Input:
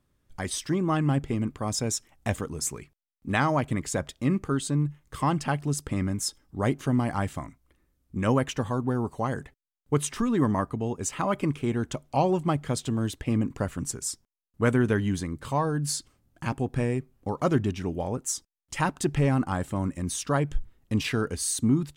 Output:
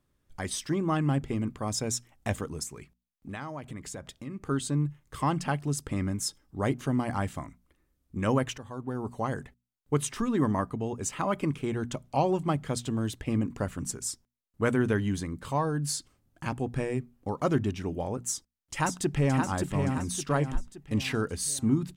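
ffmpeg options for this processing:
-filter_complex "[0:a]asettb=1/sr,asplit=3[s0][s1][s2];[s0]atrim=end=2.634[s3];[s1]atrim=start=2.63:end=4.47,asetpts=PTS-STARTPTS,afade=t=in:d=0.004:c=qsin,afade=t=out:st=1.836:d=0.004:c=qsin,acompressor=threshold=0.0158:ratio=3:attack=3.2:release=140:knee=1:detection=peak[s4];[s2]atrim=start=4.466[s5];[s3][s4]acrossfade=d=0.004:c1=hsin:c2=qsin[s6];[s6][s5]acrossfade=d=0.004:c1=qsin:c2=hsin,asplit=2[s7][s8];[s8]afade=t=in:st=18.29:d=0.01,afade=t=out:st=19.43:d=0.01,aecho=0:1:570|1140|1710|2280|2850|3420:0.595662|0.268048|0.120622|0.0542797|0.0244259|0.0109916[s9];[s7][s9]amix=inputs=2:normalize=0,asplit=2[s10][s11];[s10]atrim=end=8.58,asetpts=PTS-STARTPTS,afade=t=out:st=8.576:d=0.004:c=hsin:silence=0.188365[s12];[s11]atrim=start=8.58,asetpts=PTS-STARTPTS,afade=t=in:d=0.66:silence=0.188365[s13];[s12][s13]concat=n=2:v=0:a=1,bandreject=f=60:t=h:w=6,bandreject=f=120:t=h:w=6,bandreject=f=180:t=h:w=6,bandreject=f=240:t=h:w=6,volume=0.794"

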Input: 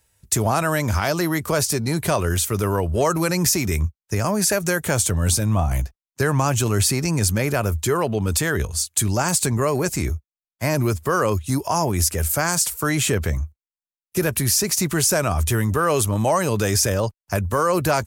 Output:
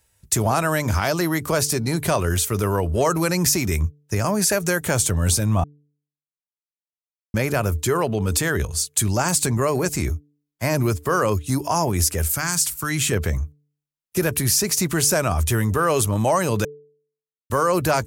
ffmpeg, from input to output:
-filter_complex "[0:a]asettb=1/sr,asplit=3[s0][s1][s2];[s0]atrim=end=12.304[s3];[s1]atrim=start=12.3:end=13.12,asetpts=PTS-STARTPTS,afade=t=in:d=0.004:c=qsin,afade=t=out:st=0.816:d=0.004:c=qsin,equalizer=f=560:w=1.1:g=-13[s4];[s2]atrim=start=13.116[s5];[s3][s4]acrossfade=d=0.004:c1=hsin:c2=qsin[s6];[s6][s5]acrossfade=d=0.004:c1=qsin:c2=hsin,asplit=5[s7][s8][s9][s10][s11];[s7]atrim=end=5.64,asetpts=PTS-STARTPTS,afade=t=out:st=5.636:d=0.004:c=hsin[s12];[s8]atrim=start=5.64:end=7.34,asetpts=PTS-STARTPTS,volume=0[s13];[s9]atrim=start=7.34:end=16.65,asetpts=PTS-STARTPTS,afade=t=in:d=0.004:c=hsin,afade=t=out:st=9.306:d=0.004:c=hsin[s14];[s10]atrim=start=16.65:end=17.5,asetpts=PTS-STARTPTS,volume=0[s15];[s11]atrim=start=17.5,asetpts=PTS-STARTPTS,afade=t=in:d=0.004:c=hsin[s16];[s12][s13][s14][s15][s16]concat=n=5:v=0:a=1,bandreject=f=146.2:t=h:w=4,bandreject=f=292.4:t=h:w=4,bandreject=f=438.6:t=h:w=4"

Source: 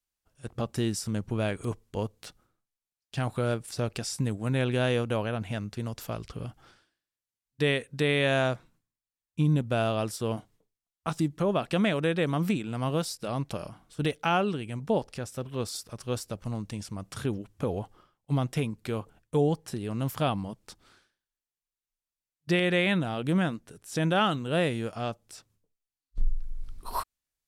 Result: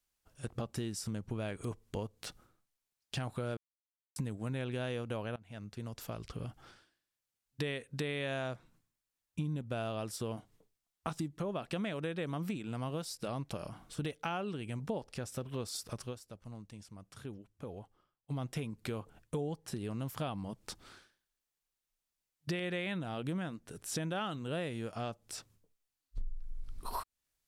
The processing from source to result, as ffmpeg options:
-filter_complex "[0:a]asplit=6[s0][s1][s2][s3][s4][s5];[s0]atrim=end=3.57,asetpts=PTS-STARTPTS,afade=t=out:st=3.566:d=0.004:c=hsin[s6];[s1]atrim=start=3.57:end=4.16,asetpts=PTS-STARTPTS,volume=0[s7];[s2]atrim=start=4.16:end=5.36,asetpts=PTS-STARTPTS,afade=t=in:d=0.004:c=hsin,afade=t=out:st=1.196:d=0.004:c=hsin:silence=0.0891251[s8];[s3]atrim=start=5.36:end=16.15,asetpts=PTS-STARTPTS,afade=t=in:d=2.27:silence=0.0891251,afade=t=out:st=10.6:d=0.19:silence=0.125893[s9];[s4]atrim=start=16.15:end=18.26,asetpts=PTS-STARTPTS,volume=0.126[s10];[s5]atrim=start=18.26,asetpts=PTS-STARTPTS,afade=t=in:d=0.19:silence=0.125893[s11];[s6][s7][s8][s9][s10][s11]concat=n=6:v=0:a=1,acompressor=threshold=0.00891:ratio=4,volume=1.58"

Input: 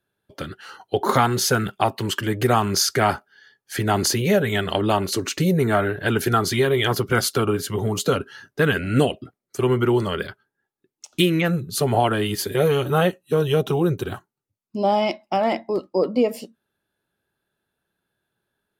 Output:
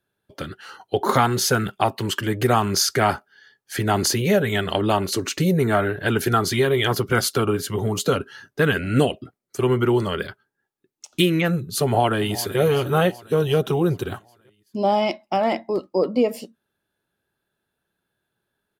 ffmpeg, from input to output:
-filter_complex "[0:a]asplit=2[s0][s1];[s1]afade=t=in:st=11.83:d=0.01,afade=t=out:st=12.59:d=0.01,aecho=0:1:380|760|1140|1520|1900|2280:0.149624|0.0897741|0.0538645|0.0323187|0.0193912|0.0116347[s2];[s0][s2]amix=inputs=2:normalize=0"

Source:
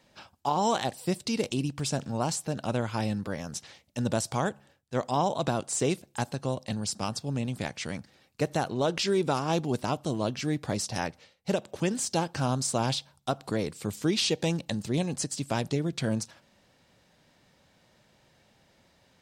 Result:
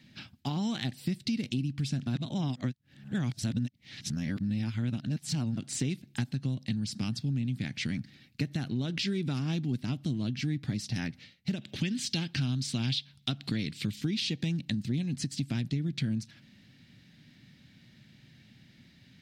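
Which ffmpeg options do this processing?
-filter_complex "[0:a]asettb=1/sr,asplit=3[s0][s1][s2];[s0]atrim=end=11.614[s3];[s1]atrim=start=11.61:end=14.01,asetpts=PTS-STARTPTS,afade=t=in:d=0.004:c=qsin,afade=t=out:st=2.396:d=0.004:c=qsin,equalizer=f=3300:t=o:w=1.6:g=9[s4];[s2]atrim=start=14.006[s5];[s3][s4]acrossfade=d=0.004:c1=hsin:c2=qsin[s6];[s6][s5]acrossfade=d=0.004:c1=qsin:c2=hsin,asplit=3[s7][s8][s9];[s7]atrim=end=2.072[s10];[s8]atrim=start=2.068:end=5.572,asetpts=PTS-STARTPTS,areverse[s11];[s9]atrim=start=5.568[s12];[s10][s11]acrossfade=d=0.004:c1=hsin:c2=hsin[s13];[s13][s12]acrossfade=d=0.004:c1=hsin:c2=hsin,equalizer=f=125:t=o:w=1:g=11,equalizer=f=250:t=o:w=1:g=11,equalizer=f=500:t=o:w=1:g=-11,equalizer=f=1000:t=o:w=1:g=-11,equalizer=f=2000:t=o:w=1:g=7,equalizer=f=4000:t=o:w=1:g=6,equalizer=f=8000:t=o:w=1:g=-6,acompressor=threshold=0.0316:ratio=4"

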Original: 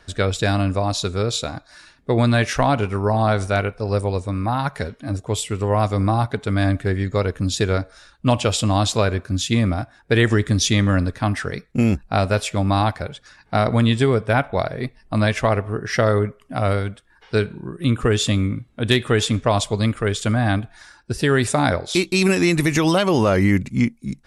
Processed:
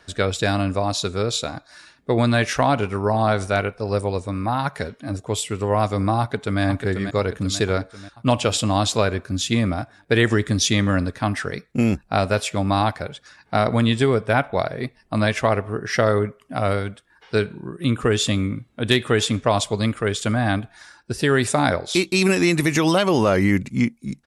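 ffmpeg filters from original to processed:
-filter_complex "[0:a]asplit=2[s0][s1];[s1]afade=t=in:st=6.2:d=0.01,afade=t=out:st=6.61:d=0.01,aecho=0:1:490|980|1470|1960|2450|2940|3430:0.421697|0.231933|0.127563|0.0701598|0.0385879|0.0212233|0.0116728[s2];[s0][s2]amix=inputs=2:normalize=0,highpass=f=120:p=1"

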